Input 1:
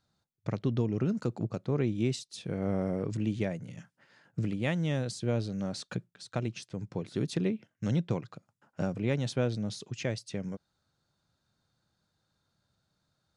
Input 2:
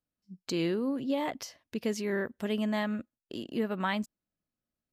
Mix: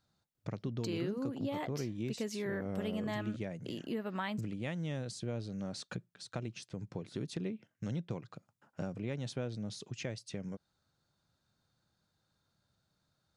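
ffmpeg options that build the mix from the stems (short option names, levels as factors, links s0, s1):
-filter_complex "[0:a]volume=0.841[s0];[1:a]adelay=350,volume=1.12[s1];[s0][s1]amix=inputs=2:normalize=0,acompressor=threshold=0.01:ratio=2"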